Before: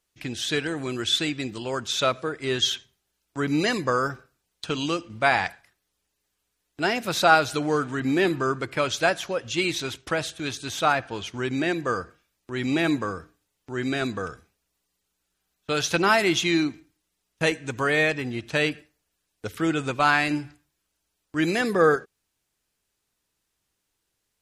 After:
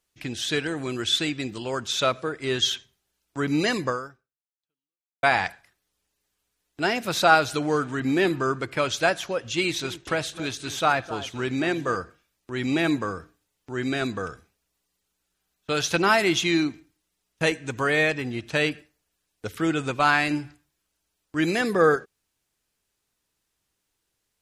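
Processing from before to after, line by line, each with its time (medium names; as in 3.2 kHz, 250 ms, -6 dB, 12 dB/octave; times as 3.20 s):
3.87–5.23 s: fade out exponential
9.53–11.96 s: echo whose repeats swap between lows and highs 261 ms, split 1.5 kHz, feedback 61%, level -13.5 dB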